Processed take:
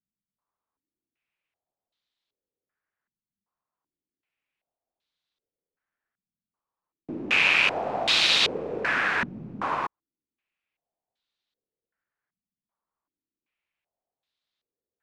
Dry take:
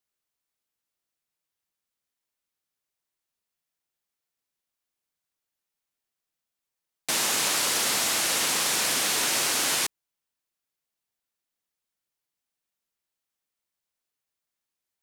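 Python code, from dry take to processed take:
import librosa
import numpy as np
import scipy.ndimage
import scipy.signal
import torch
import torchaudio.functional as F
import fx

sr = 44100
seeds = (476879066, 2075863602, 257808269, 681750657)

y = fx.rattle_buzz(x, sr, strikes_db=-48.0, level_db=-18.0)
y = fx.filter_held_lowpass(y, sr, hz=2.6, low_hz=200.0, high_hz=3800.0)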